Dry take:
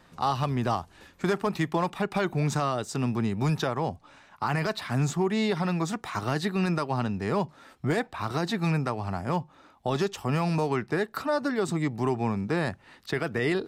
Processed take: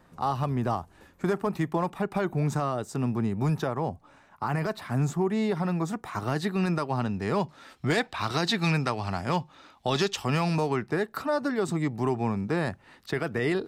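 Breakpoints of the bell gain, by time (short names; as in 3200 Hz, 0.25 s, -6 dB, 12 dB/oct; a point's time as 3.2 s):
bell 3900 Hz 2.2 oct
6.03 s -8.5 dB
6.43 s -2.5 dB
7.01 s -2.5 dB
7.92 s +8.5 dB
10.22 s +8.5 dB
10.8 s -2.5 dB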